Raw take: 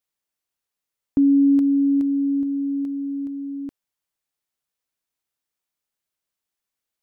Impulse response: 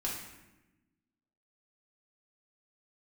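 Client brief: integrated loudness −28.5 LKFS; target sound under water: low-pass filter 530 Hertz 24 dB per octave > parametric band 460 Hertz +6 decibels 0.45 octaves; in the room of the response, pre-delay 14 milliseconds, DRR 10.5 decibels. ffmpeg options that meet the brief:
-filter_complex "[0:a]asplit=2[link_01][link_02];[1:a]atrim=start_sample=2205,adelay=14[link_03];[link_02][link_03]afir=irnorm=-1:irlink=0,volume=-13.5dB[link_04];[link_01][link_04]amix=inputs=2:normalize=0,lowpass=frequency=530:width=0.5412,lowpass=frequency=530:width=1.3066,equalizer=frequency=460:width_type=o:width=0.45:gain=6,volume=-10.5dB"

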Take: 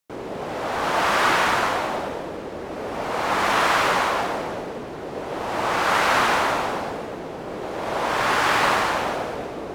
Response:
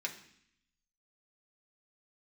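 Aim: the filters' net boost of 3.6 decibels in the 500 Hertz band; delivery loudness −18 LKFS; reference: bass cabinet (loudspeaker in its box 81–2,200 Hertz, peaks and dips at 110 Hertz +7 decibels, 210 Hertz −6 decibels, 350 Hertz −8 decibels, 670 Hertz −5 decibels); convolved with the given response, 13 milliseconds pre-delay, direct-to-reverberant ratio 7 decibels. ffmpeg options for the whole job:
-filter_complex "[0:a]equalizer=frequency=500:width_type=o:gain=8,asplit=2[link_01][link_02];[1:a]atrim=start_sample=2205,adelay=13[link_03];[link_02][link_03]afir=irnorm=-1:irlink=0,volume=-9dB[link_04];[link_01][link_04]amix=inputs=2:normalize=0,highpass=frequency=81:width=0.5412,highpass=frequency=81:width=1.3066,equalizer=frequency=110:width_type=q:width=4:gain=7,equalizer=frequency=210:width_type=q:width=4:gain=-6,equalizer=frequency=350:width_type=q:width=4:gain=-8,equalizer=frequency=670:width_type=q:width=4:gain=-5,lowpass=frequency=2200:width=0.5412,lowpass=frequency=2200:width=1.3066,volume=4dB"

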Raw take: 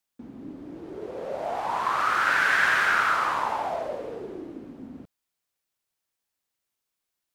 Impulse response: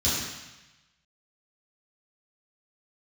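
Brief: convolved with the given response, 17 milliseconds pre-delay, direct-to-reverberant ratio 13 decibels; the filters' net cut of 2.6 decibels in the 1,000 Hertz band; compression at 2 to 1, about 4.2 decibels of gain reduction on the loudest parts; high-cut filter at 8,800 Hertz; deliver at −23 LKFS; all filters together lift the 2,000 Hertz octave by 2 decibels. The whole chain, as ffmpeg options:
-filter_complex "[0:a]lowpass=8800,equalizer=frequency=1000:width_type=o:gain=-6,equalizer=frequency=2000:width_type=o:gain=5.5,acompressor=threshold=-24dB:ratio=2,asplit=2[link_01][link_02];[1:a]atrim=start_sample=2205,adelay=17[link_03];[link_02][link_03]afir=irnorm=-1:irlink=0,volume=-25dB[link_04];[link_01][link_04]amix=inputs=2:normalize=0,volume=4dB"

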